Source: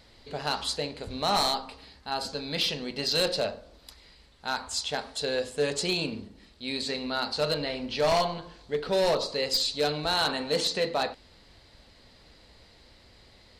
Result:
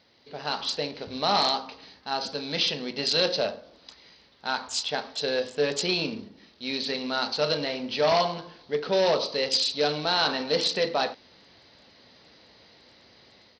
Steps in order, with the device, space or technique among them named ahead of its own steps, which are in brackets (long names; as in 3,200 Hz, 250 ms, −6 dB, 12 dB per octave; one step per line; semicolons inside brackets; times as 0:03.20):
Bluetooth headset (high-pass filter 150 Hz 12 dB per octave; automatic gain control gain up to 7 dB; downsampling to 16,000 Hz; level −5 dB; SBC 64 kbit/s 44,100 Hz)